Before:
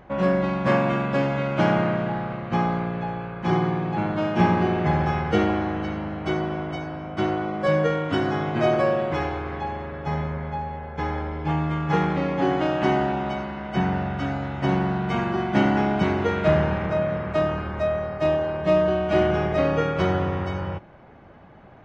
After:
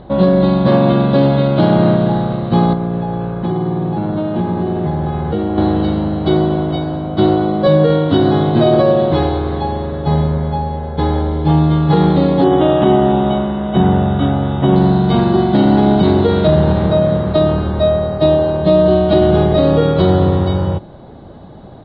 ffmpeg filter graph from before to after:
-filter_complex "[0:a]asettb=1/sr,asplit=3[s0][s1][s2];[s0]atrim=end=2.734[s3];[s1]atrim=start=2.73:end=5.58,asetpts=PTS-STARTPTS,afade=t=in:d=0.004:c=qsin,afade=t=out:st=2.846:d=0.004:c=qsin,lowpass=2700,acompressor=threshold=0.0447:ratio=5:attack=3.2:release=140:knee=1:detection=peak[s4];[s2]atrim=start=5.576[s5];[s3][s4]acrossfade=d=0.004:c1=hsin:c2=qsin[s6];[s6][s5]acrossfade=d=0.004:c1=qsin:c2=hsin,asettb=1/sr,asplit=3[s7][s8][s9];[s7]atrim=end=12.444[s10];[s8]atrim=start=12.44:end=14.76,asetpts=PTS-STARTPTS,afade=t=in:d=0.004:c=qsin,afade=t=out:st=2.316:d=0.004:c=qsin,asuperstop=centerf=4700:order=20:qfactor=2.4,equalizer=f=1100:t=o:w=0.33:g=3.5,asplit=2[s11][s12];[s12]adelay=24,volume=0.299[s13];[s11][s13]amix=inputs=2:normalize=0,atrim=end_sample=102312[s14];[s9]atrim=start=14.756[s15];[s10][s14]acrossfade=d=0.004:c1=hsin:c2=qsin[s16];[s16][s15]acrossfade=d=0.004:c1=qsin:c2=hsin,firequalizer=gain_entry='entry(340,0);entry(1400,-11);entry(2400,-16);entry(3900,8);entry(5800,-27)':delay=0.05:min_phase=1,alimiter=level_in=5.62:limit=0.891:release=50:level=0:latency=1,volume=0.841"

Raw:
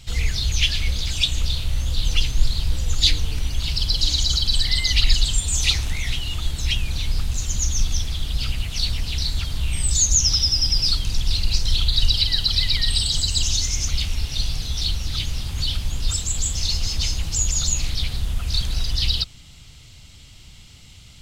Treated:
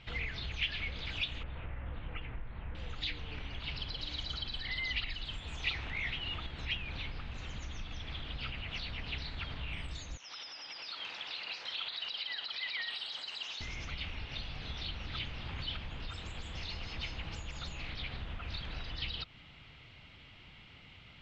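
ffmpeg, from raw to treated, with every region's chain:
-filter_complex "[0:a]asettb=1/sr,asplit=3[s0][s1][s2];[s0]atrim=end=1.434[s3];[s1]atrim=start=1.43:end=2.75,asetpts=PTS-STARTPTS,afade=t=in:d=0.004:c=qsin,afade=t=out:st=1.316:d=0.004:c=qsin,lowpass=f=2100:w=0.5412,lowpass=f=2100:w=1.3066,asplit=2[s4][s5];[s5]adelay=18,volume=0.237[s6];[s4][s6]amix=inputs=2:normalize=0,atrim=end_sample=58212[s7];[s2]atrim=start=2.746[s8];[s3][s7]acrossfade=d=0.004:c1=hsin:c2=qsin[s9];[s9][s8]acrossfade=d=0.004:c1=qsin:c2=hsin,asettb=1/sr,asplit=3[s10][s11][s12];[s10]atrim=end=10.174[s13];[s11]atrim=start=10.17:end=13.61,asetpts=PTS-STARTPTS,afade=t=in:d=0.004:c=qsin,afade=t=out:st=3.436:d=0.004:c=qsin,highpass=630,acompressor=threshold=0.0501:ratio=2:attack=3.2:release=140:knee=1:detection=peak[s14];[s12]atrim=start=13.606[s15];[s13][s14]acrossfade=d=0.004:c1=hsin:c2=qsin[s16];[s16][s15]acrossfade=d=0.004:c1=qsin:c2=hsin,acompressor=threshold=0.0631:ratio=3,lowpass=f=2500:w=0.5412,lowpass=f=2500:w=1.3066,aemphasis=mode=production:type=bsi,volume=0.891"

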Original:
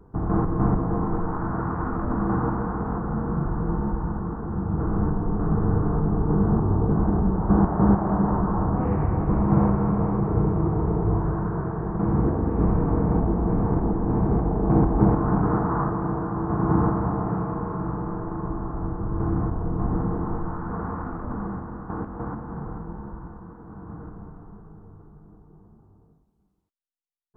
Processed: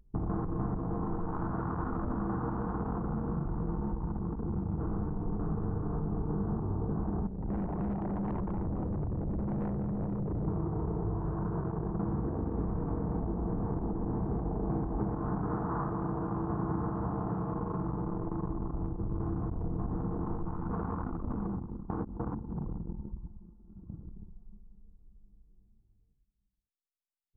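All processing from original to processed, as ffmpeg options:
-filter_complex "[0:a]asettb=1/sr,asplit=3[s0][s1][s2];[s0]atrim=end=7.274[s3];[s1]atrim=start=7.27:end=10.48,asetpts=PTS-STARTPTS,afade=t=in:d=0.004:c=qsin,afade=t=out:st=3.206:d=0.004:c=qsin,lowpass=f=1100:p=1,aeval=exprs='(tanh(25.1*val(0)+0.2)-tanh(0.2))/25.1':c=same[s4];[s2]atrim=start=10.476[s5];[s3][s4]acrossfade=d=0.004:c1=hsin:c2=qsin[s6];[s6][s5]acrossfade=d=0.004:c1=qsin:c2=hsin,anlmdn=63.1,acompressor=threshold=0.0316:ratio=6"

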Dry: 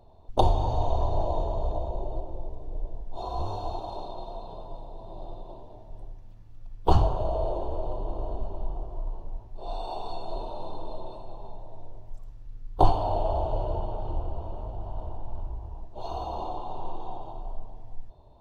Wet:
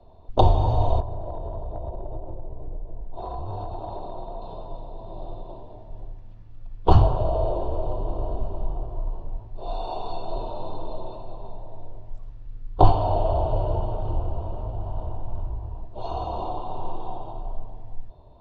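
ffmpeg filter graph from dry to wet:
-filter_complex "[0:a]asettb=1/sr,asplit=3[s0][s1][s2];[s0]atrim=end=1.004[s3];[s1]atrim=start=1:end=4.42,asetpts=PTS-STARTPTS,afade=t=in:d=0.004:c=qsin,afade=t=out:st=3.416:d=0.004:c=qsin,lowpass=f=1600:p=1,acompressor=threshold=0.0282:ratio=10:attack=3.2:release=140:knee=1:detection=peak[s4];[s2]atrim=start=4.416[s5];[s3][s4]acrossfade=d=0.004:c1=hsin:c2=qsin[s6];[s6][s5]acrossfade=d=0.004:c1=qsin:c2=hsin,lowpass=4000,bandreject=f=840:w=18,adynamicequalizer=threshold=0.00355:dfrequency=110:dqfactor=2:tfrequency=110:tqfactor=2:attack=5:release=100:ratio=0.375:range=2.5:mode=boostabove:tftype=bell,volume=1.58"

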